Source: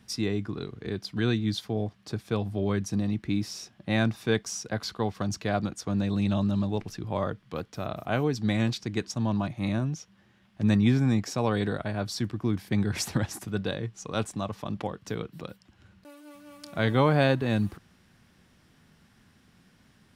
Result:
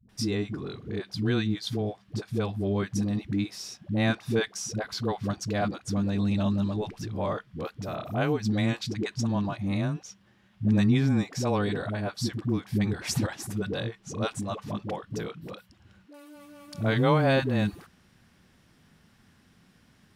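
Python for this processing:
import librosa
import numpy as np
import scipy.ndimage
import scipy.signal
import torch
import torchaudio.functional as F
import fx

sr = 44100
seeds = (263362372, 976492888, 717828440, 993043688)

y = fx.dispersion(x, sr, late='highs', ms=92.0, hz=350.0)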